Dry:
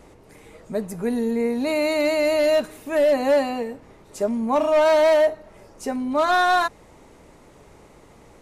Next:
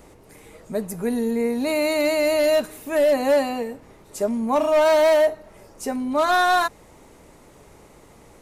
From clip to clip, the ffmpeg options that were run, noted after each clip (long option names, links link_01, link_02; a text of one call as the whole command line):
ffmpeg -i in.wav -af "highshelf=frequency=10000:gain=11" out.wav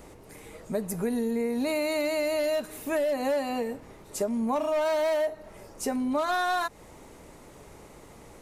ffmpeg -i in.wav -af "acompressor=threshold=-25dB:ratio=6" out.wav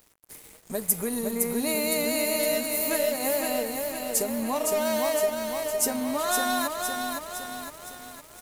ffmpeg -i in.wav -af "aemphasis=mode=production:type=75fm,aecho=1:1:511|1022|1533|2044|2555|3066|3577|4088:0.631|0.366|0.212|0.123|0.0714|0.0414|0.024|0.0139,aeval=exprs='sgn(val(0))*max(abs(val(0))-0.00841,0)':channel_layout=same" out.wav